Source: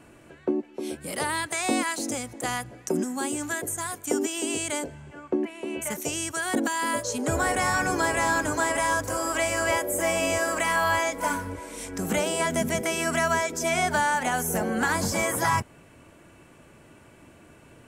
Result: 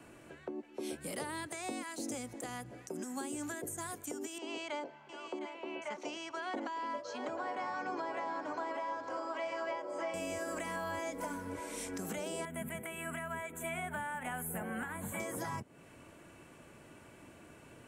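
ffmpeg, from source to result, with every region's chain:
-filter_complex "[0:a]asettb=1/sr,asplit=3[a][b][c];[a]atrim=end=4.384[d];[b]atrim=start=4.38:end=10.14,asetpts=PTS-STARTPTS,afade=t=in:d=0.004:c=qsin,afade=t=out:st=5.756:d=0.004:c=qsin,highpass=450,equalizer=f=450:t=q:w=4:g=-7,equalizer=f=940:t=q:w=4:g=4,equalizer=f=1.7k:t=q:w=4:g=-6,equalizer=f=2.6k:t=q:w=4:g=-3,equalizer=f=3.7k:t=q:w=4:g=-6,lowpass=f=4.4k:w=0.5412,lowpass=f=4.4k:w=1.3066,aecho=1:1:709:0.299,atrim=end_sample=254016[e];[c]atrim=start=10.136[f];[d][e]acrossfade=d=0.004:c1=hsin:c2=qsin[g];[g][f]acrossfade=d=0.004:c1=qsin:c2=hsin,asettb=1/sr,asplit=3[h][i][j];[h]atrim=end=12.454[k];[i]atrim=start=12.45:end=15.2,asetpts=PTS-STARTPTS,afade=t=in:d=0.004:c=qsin,afade=t=out:st=2.746:d=0.004:c=qsin,asuperstop=centerf=5200:order=4:qfactor=0.82,equalizer=f=380:t=o:w=2.1:g=-12[l];[j]atrim=start=15.196[m];[k][l]acrossfade=d=0.004:c1=hsin:c2=qsin[n];[n][m]acrossfade=d=0.004:c1=qsin:c2=hsin,acrossover=split=110|550[o][p][q];[o]acompressor=threshold=-53dB:ratio=4[r];[p]acompressor=threshold=-33dB:ratio=4[s];[q]acompressor=threshold=-37dB:ratio=4[t];[r][s][t]amix=inputs=3:normalize=0,lowshelf=f=100:g=-5.5,alimiter=level_in=2dB:limit=-24dB:level=0:latency=1:release=327,volume=-2dB,volume=-3dB"

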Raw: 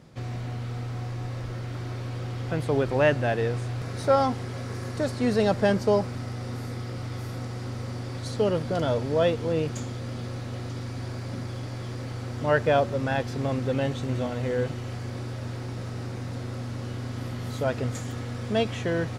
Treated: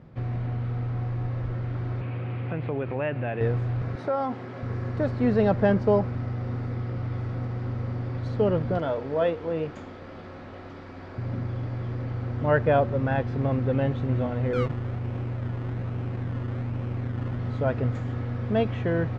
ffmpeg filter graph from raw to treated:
-filter_complex "[0:a]asettb=1/sr,asplit=3[a][b][c];[a]atrim=end=2.014[d];[b]atrim=start=2.01:end=3.41,asetpts=PTS-STARTPTS,afade=t=in:d=0.004:c=qsin,afade=t=out:st=1.396:d=0.004:c=qsin,acompressor=threshold=-29dB:ratio=2.5:attack=3.2:release=140:knee=1:detection=peak,highpass=100,lowpass=3.8k,equalizer=f=2.5k:w=3.2:g=9.5[e];[c]atrim=start=3.406[f];[d][e]acrossfade=d=0.004:c1=hsin:c2=qsin[g];[g][f]acrossfade=d=0.004:c1=qsin:c2=hsin,asettb=1/sr,asplit=3[h][i][j];[h]atrim=end=3.954[k];[i]atrim=start=3.95:end=4.63,asetpts=PTS-STARTPTS,afade=t=in:d=0.004:c=qsin,afade=t=out:st=0.676:d=0.004:c=qsin,highpass=220,bandreject=f=460:w=15,acompressor=threshold=-25dB:ratio=2.5:attack=3.2:release=140:knee=1:detection=peak[l];[j]atrim=start=4.626[m];[k][l]acrossfade=d=0.004:c1=hsin:c2=qsin[n];[n][m]acrossfade=d=0.004:c1=qsin:c2=hsin,asettb=1/sr,asplit=3[o][p][q];[o]atrim=end=8.784[r];[p]atrim=start=8.78:end=11.18,asetpts=PTS-STARTPTS,afade=t=in:d=0.004:c=qsin,afade=t=out:st=2.396:d=0.004:c=qsin,lowshelf=f=210:g=-10.5,bandreject=f=60:t=h:w=6,bandreject=f=120:t=h:w=6,bandreject=f=180:t=h:w=6,bandreject=f=240:t=h:w=6,bandreject=f=300:t=h:w=6,bandreject=f=360:t=h:w=6,bandreject=f=420:t=h:w=6,bandreject=f=480:t=h:w=6,bandreject=f=540:t=h:w=6[s];[q]atrim=start=11.176[t];[r][s]acrossfade=d=0.004:c1=hsin:c2=qsin[u];[u][t]acrossfade=d=0.004:c1=qsin:c2=hsin,asettb=1/sr,asplit=3[v][w][x];[v]atrim=end=14.534[y];[w]atrim=start=14.53:end=17.39,asetpts=PTS-STARTPTS,afade=t=in:d=0.004:c=qsin,afade=t=out:st=2.856:d=0.004:c=qsin,lowpass=f=3.1k:w=0.5412,lowpass=f=3.1k:w=1.3066,acrusher=samples=22:mix=1:aa=0.000001:lfo=1:lforange=13.2:lforate=1.2[z];[x]atrim=start=17.386[aa];[y][z]acrossfade=d=0.004:c1=hsin:c2=qsin[ab];[ab][aa]acrossfade=d=0.004:c1=qsin:c2=hsin,lowpass=2.1k,lowshelf=f=150:g=6.5"

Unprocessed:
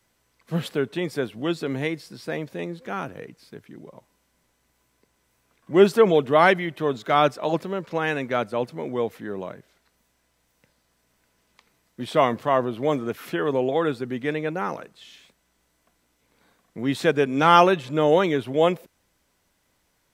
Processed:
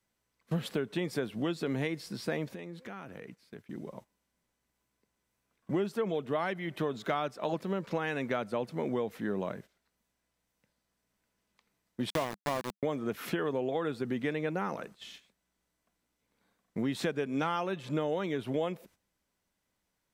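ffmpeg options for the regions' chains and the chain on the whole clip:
-filter_complex "[0:a]asettb=1/sr,asplit=3[a][b][c];[a]atrim=end=2.534[d];[b]atrim=start=2.53:end=3.69,asetpts=PTS-STARTPTS,afade=t=in:d=0.004:c=qsin,afade=t=out:st=1.156:d=0.004:c=qsin,highpass=f=62:p=1,equalizer=f=2.1k:w=1.4:g=3,acompressor=threshold=-42dB:ratio=4:attack=3.2:release=140:knee=1:detection=peak[e];[c]atrim=start=3.686[f];[d][e]acrossfade=d=0.004:c1=hsin:c2=qsin[g];[g][f]acrossfade=d=0.004:c1=qsin:c2=hsin,asettb=1/sr,asplit=3[h][i][j];[h]atrim=end=12.104[k];[i]atrim=start=12.1:end=12.83,asetpts=PTS-STARTPTS,afade=t=in:d=0.004:c=qsin,afade=t=out:st=0.726:d=0.004:c=qsin,bandreject=f=1.3k:w=8.4,aeval=exprs='val(0)*gte(abs(val(0)),0.0944)':c=same[l];[j]atrim=start=12.826[m];[k][l]acrossfade=d=0.004:c1=hsin:c2=qsin[n];[n][m]acrossfade=d=0.004:c1=qsin:c2=hsin,agate=range=-13dB:threshold=-48dB:ratio=16:detection=peak,equalizer=f=200:t=o:w=0.34:g=5,acompressor=threshold=-28dB:ratio=12"

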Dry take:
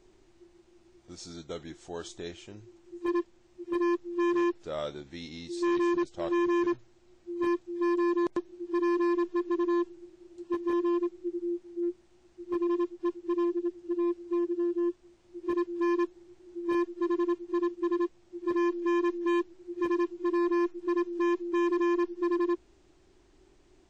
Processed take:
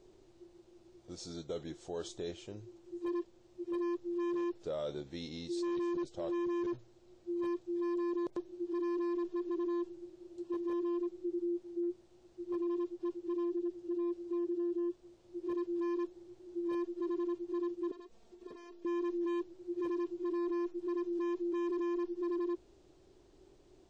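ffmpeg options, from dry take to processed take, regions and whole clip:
-filter_complex "[0:a]asettb=1/sr,asplit=3[a][b][c];[a]atrim=end=17.914[d];[b]atrim=start=17.91:end=18.85,asetpts=PTS-STARTPTS,afade=t=in:d=0.004:c=qsin,afade=t=out:st=0.936:d=0.004:c=qsin,acompressor=threshold=-41dB:ratio=4:attack=3.2:release=140:knee=1:detection=peak,aecho=1:1:4.4:0.9,atrim=end_sample=41454[e];[c]atrim=start=18.846[f];[d][e]acrossfade=d=0.004:c1=hsin:c2=qsin[g];[g][f]acrossfade=d=0.004:c1=qsin:c2=hsin,equalizer=f=125:t=o:w=1:g=5,equalizer=f=500:t=o:w=1:g=8,equalizer=f=2k:t=o:w=1:g=-4,equalizer=f=4k:t=o:w=1:g=3,alimiter=level_in=2.5dB:limit=-24dB:level=0:latency=1:release=18,volume=-2.5dB,volume=-4dB"

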